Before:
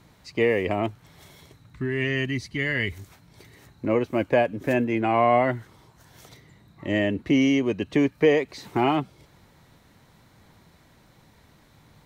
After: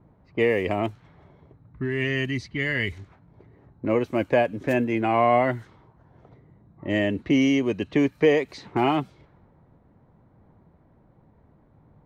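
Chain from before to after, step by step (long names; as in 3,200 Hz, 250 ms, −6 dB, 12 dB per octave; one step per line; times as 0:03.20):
low-pass that shuts in the quiet parts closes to 750 Hz, open at −21.5 dBFS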